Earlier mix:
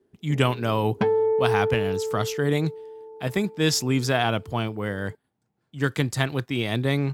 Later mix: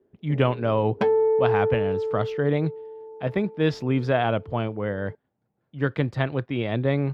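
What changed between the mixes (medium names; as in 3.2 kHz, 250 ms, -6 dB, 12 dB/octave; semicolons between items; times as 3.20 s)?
speech: add distance through air 360 m; second sound: add Bessel high-pass 210 Hz; master: add peaking EQ 560 Hz +6.5 dB 0.45 oct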